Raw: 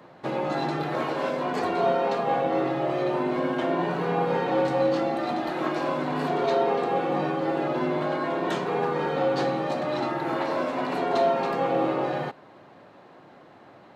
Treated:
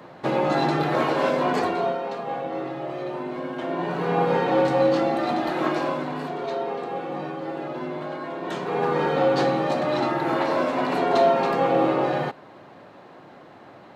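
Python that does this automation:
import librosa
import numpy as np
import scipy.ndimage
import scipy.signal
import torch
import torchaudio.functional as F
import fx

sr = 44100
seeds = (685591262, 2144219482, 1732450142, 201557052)

y = fx.gain(x, sr, db=fx.line((1.52, 5.5), (2.02, -5.0), (3.51, -5.0), (4.2, 3.5), (5.73, 3.5), (6.33, -5.0), (8.39, -5.0), (8.93, 4.0)))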